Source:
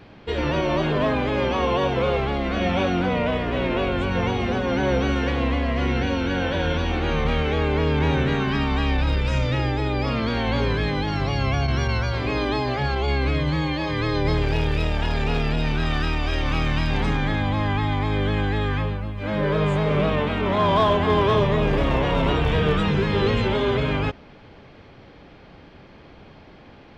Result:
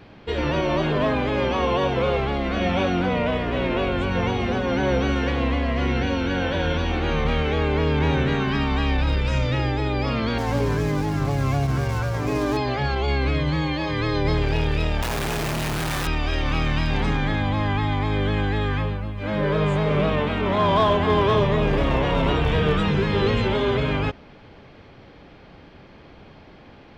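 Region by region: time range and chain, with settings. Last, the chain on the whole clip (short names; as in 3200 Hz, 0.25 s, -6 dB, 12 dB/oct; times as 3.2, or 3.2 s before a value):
10.38–12.57 median filter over 15 samples + comb 6.8 ms, depth 53%
15.02–16.07 low shelf 120 Hz -6.5 dB + Schmitt trigger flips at -34.5 dBFS
whole clip: dry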